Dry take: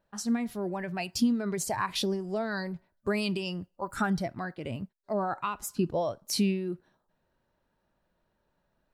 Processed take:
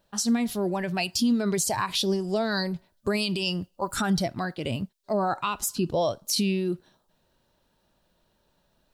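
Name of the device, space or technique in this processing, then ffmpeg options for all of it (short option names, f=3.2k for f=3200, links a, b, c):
over-bright horn tweeter: -af "highshelf=f=2.6k:t=q:w=1.5:g=6.5,alimiter=limit=-22dB:level=0:latency=1:release=93,volume=6dB"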